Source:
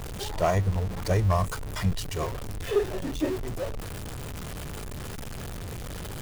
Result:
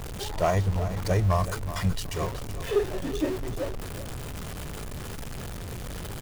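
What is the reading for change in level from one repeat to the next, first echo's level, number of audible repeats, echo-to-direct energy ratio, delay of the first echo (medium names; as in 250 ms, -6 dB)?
-14.0 dB, -12.0 dB, 2, -12.0 dB, 376 ms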